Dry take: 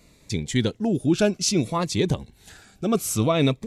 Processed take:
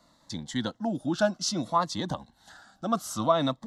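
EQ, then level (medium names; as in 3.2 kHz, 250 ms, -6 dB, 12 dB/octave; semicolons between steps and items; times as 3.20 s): three-band isolator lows -19 dB, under 240 Hz, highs -17 dB, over 4.8 kHz; static phaser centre 1 kHz, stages 4; +3.5 dB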